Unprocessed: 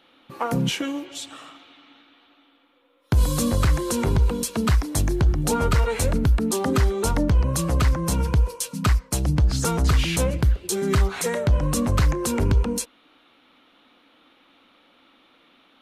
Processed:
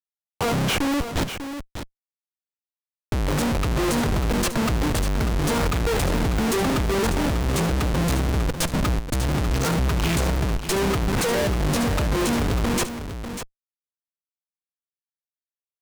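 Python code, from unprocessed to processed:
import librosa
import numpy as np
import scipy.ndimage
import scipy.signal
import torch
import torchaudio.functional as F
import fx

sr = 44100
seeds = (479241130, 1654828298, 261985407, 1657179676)

p1 = fx.power_curve(x, sr, exponent=1.4)
p2 = fx.schmitt(p1, sr, flips_db=-35.0)
p3 = p2 + fx.echo_single(p2, sr, ms=595, db=-9.5, dry=0)
p4 = fx.doppler_dist(p3, sr, depth_ms=0.13)
y = p4 * librosa.db_to_amplitude(2.5)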